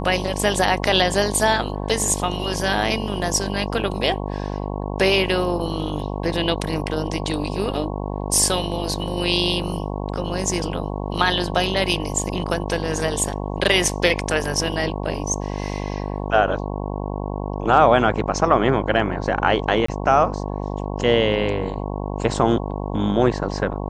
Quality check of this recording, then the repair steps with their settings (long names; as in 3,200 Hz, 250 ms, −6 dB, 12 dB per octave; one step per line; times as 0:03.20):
mains buzz 50 Hz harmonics 22 −27 dBFS
0:19.86–0:19.88: drop-out 24 ms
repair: hum removal 50 Hz, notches 22
repair the gap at 0:19.86, 24 ms